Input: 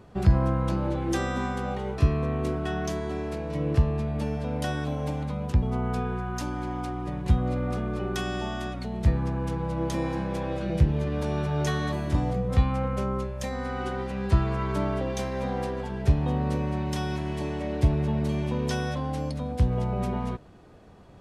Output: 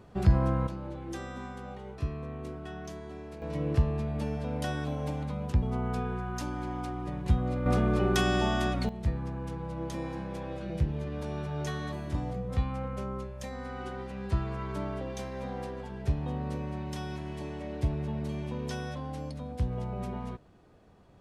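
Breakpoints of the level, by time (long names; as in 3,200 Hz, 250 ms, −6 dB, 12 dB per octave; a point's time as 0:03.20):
−2.5 dB
from 0:00.67 −11.5 dB
from 0:03.42 −3.5 dB
from 0:07.66 +4 dB
from 0:08.89 −7.5 dB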